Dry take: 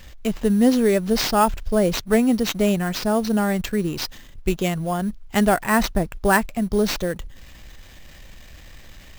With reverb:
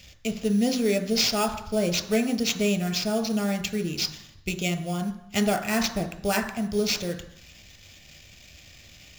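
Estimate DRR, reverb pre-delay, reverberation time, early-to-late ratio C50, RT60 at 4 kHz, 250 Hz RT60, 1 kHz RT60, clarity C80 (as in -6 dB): 8.5 dB, 3 ms, 0.80 s, 13.0 dB, 0.80 s, 0.80 s, 0.80 s, 15.5 dB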